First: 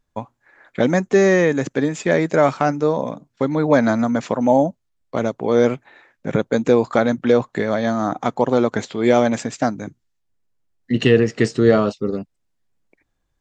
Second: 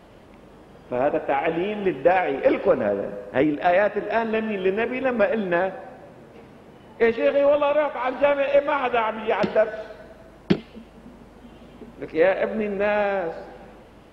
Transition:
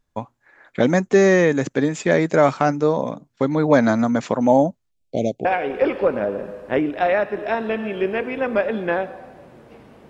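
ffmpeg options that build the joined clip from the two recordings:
-filter_complex "[0:a]asettb=1/sr,asplit=3[s0][s1][s2];[s0]atrim=end=4.914[s3];[s1]atrim=start=4.91:end=5.45,asetpts=PTS-STARTPTS,afade=t=in:d=0.004:c=qsin,afade=t=out:st=0.536:d=0.004:c=qsin,asuperstop=centerf=1300:order=12:qfactor=0.84[s4];[s2]atrim=start=5.446[s5];[s3][s4]acrossfade=d=0.004:c1=hsin:c2=qsin[s6];[s6][s5]acrossfade=d=0.004:c1=qsin:c2=hsin,apad=whole_dur=10.09,atrim=end=10.09,atrim=end=5.452[s7];[1:a]atrim=start=2.088:end=6.73[s8];[s7][s8]acrossfade=d=0.004:c1=hsin:c2=hsin"

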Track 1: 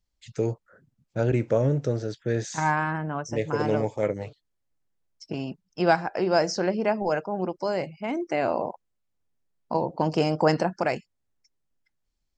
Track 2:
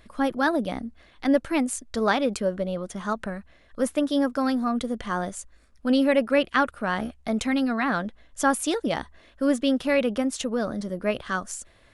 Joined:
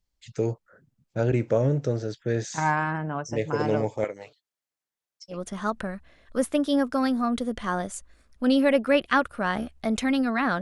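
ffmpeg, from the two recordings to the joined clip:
-filter_complex "[0:a]asettb=1/sr,asplit=3[s0][s1][s2];[s0]atrim=end=4.044[s3];[s1]atrim=start=4.04:end=5.38,asetpts=PTS-STARTPTS,afade=t=in:d=0.004:c=qsin,afade=t=out:st=1.336:d=0.004:c=qsin,highpass=f=1000:p=1[s4];[s2]atrim=start=5.376[s5];[s3][s4]acrossfade=d=0.004:c1=hsin:c2=qsin[s6];[s6][s5]acrossfade=d=0.004:c1=qsin:c2=hsin,apad=whole_dur=10.61,atrim=end=10.61,atrim=end=5.38,asetpts=PTS-STARTPTS[s7];[1:a]atrim=start=2.71:end=8.04,asetpts=PTS-STARTPTS[s8];[s7][s8]acrossfade=d=0.1:c1=tri:c2=tri"

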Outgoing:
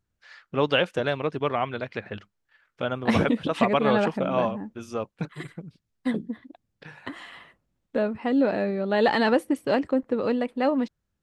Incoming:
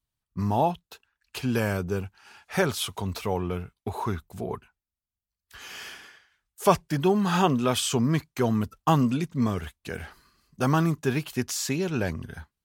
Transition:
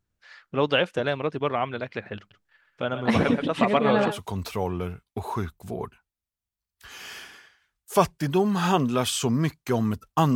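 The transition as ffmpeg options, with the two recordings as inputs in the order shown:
-filter_complex "[0:a]asettb=1/sr,asplit=3[s0][s1][s2];[s0]atrim=end=2.184[s3];[s1]atrim=start=2.18:end=4.19,asetpts=PTS-STARTPTS,afade=t=in:d=0.004:c=qsin,afade=t=out:st=2.006:d=0.004:c=qsin,aecho=1:1:126|133:0.251|0.299,atrim=end_sample=88641[s4];[s2]atrim=start=4.186[s5];[s3][s4]acrossfade=d=0.004:c1=hsin:c2=qsin[s6];[s6][s5]acrossfade=d=0.004:c1=qsin:c2=hsin,apad=whole_dur=10.35,atrim=end=10.35,atrim=end=4.19,asetpts=PTS-STARTPTS[s7];[1:a]atrim=start=2.81:end=9.05,asetpts=PTS-STARTPTS[s8];[s7][s8]acrossfade=d=0.08:c1=tri:c2=tri"

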